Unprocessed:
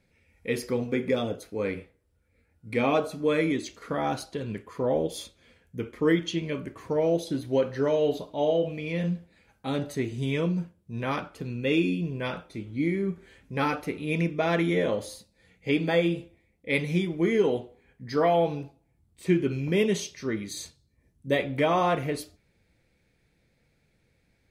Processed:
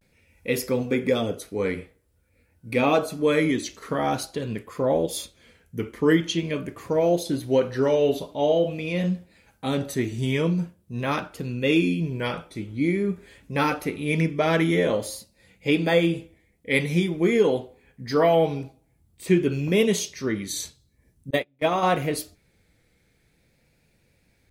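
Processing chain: 21.29–21.83 s: gate -22 dBFS, range -37 dB; treble shelf 7.5 kHz +8.5 dB; vibrato 0.47 Hz 67 cents; trim +3.5 dB

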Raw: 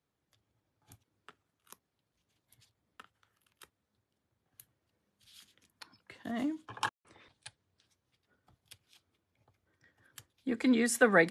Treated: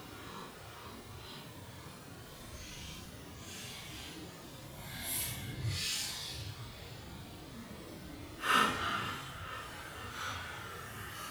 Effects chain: power-law waveshaper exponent 0.7; bucket-brigade echo 68 ms, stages 2048, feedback 69%, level -14 dB; Paulstretch 7.2×, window 0.05 s, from 1.81 s; trim +12.5 dB

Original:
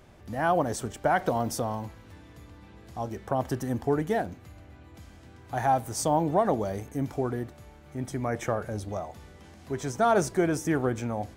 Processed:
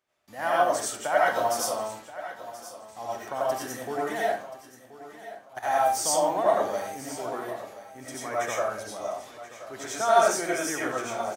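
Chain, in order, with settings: high-pass 1.2 kHz 6 dB/octave; gate -57 dBFS, range -20 dB; 4.33–5.63 s: level held to a coarse grid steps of 17 dB; feedback delay 1029 ms, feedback 30%, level -15 dB; reverberation RT60 0.40 s, pre-delay 50 ms, DRR -6.5 dB

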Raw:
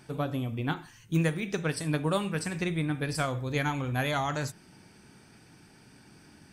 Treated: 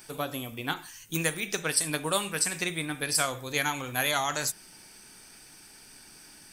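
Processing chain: RIAA curve recording; added noise brown -68 dBFS; trim +1.5 dB

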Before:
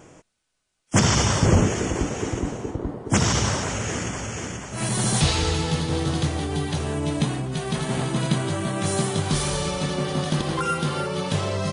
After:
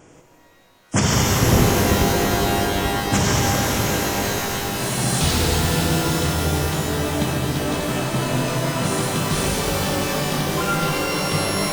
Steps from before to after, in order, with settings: spectral freeze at 8.27 s, 0.55 s; pitch-shifted reverb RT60 3.8 s, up +12 st, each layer -2 dB, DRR 0.5 dB; trim -1 dB

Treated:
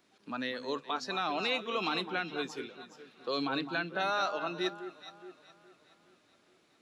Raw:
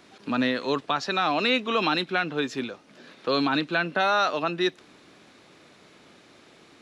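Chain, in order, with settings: treble shelf 7 kHz +6 dB; hum notches 50/100/150 Hz; echo whose repeats swap between lows and highs 209 ms, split 1.6 kHz, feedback 71%, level -8.5 dB; spectral noise reduction 7 dB; trim -9 dB

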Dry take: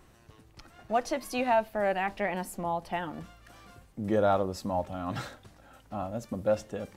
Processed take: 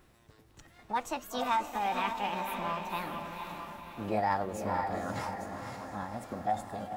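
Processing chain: chunks repeated in reverse 455 ms, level -10 dB; echo that smears into a reverb 507 ms, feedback 51%, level -6 dB; formant shift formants +5 st; trim -4.5 dB

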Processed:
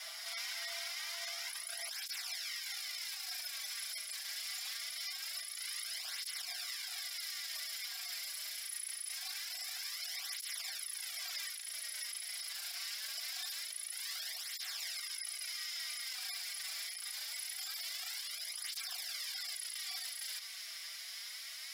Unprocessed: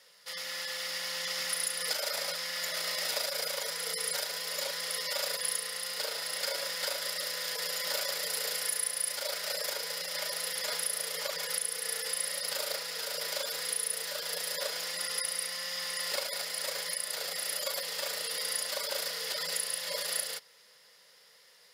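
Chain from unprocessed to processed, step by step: high-pass 620 Hz 12 dB/octave, from 1.89 s 1.5 kHz; compressor with a negative ratio -44 dBFS, ratio -1; peak limiter -38.5 dBFS, peak gain reduction 11 dB; frequency shift +160 Hz; cancelling through-zero flanger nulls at 0.24 Hz, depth 5.7 ms; trim +9 dB

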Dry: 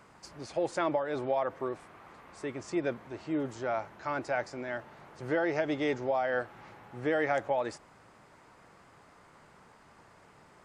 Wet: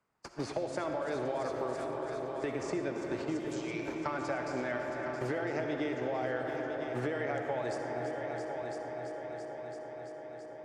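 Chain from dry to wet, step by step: gate -45 dBFS, range -50 dB; 3.39–3.88 s: steep high-pass 2.2 kHz 96 dB/octave; compression 6:1, threshold -39 dBFS, peak gain reduction 14 dB; on a send: multi-head delay 335 ms, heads all three, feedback 41%, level -14 dB; on the sum: algorithmic reverb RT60 4.3 s, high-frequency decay 0.3×, pre-delay 20 ms, DRR 3.5 dB; three bands compressed up and down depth 70%; trim +5.5 dB

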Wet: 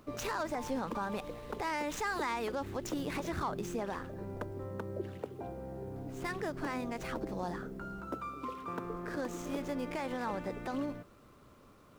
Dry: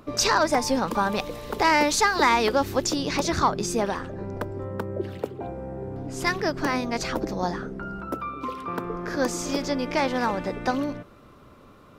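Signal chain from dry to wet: median filter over 9 samples; bit crusher 10-bit; peak limiter -18 dBFS, peak gain reduction 8 dB; trim -8.5 dB

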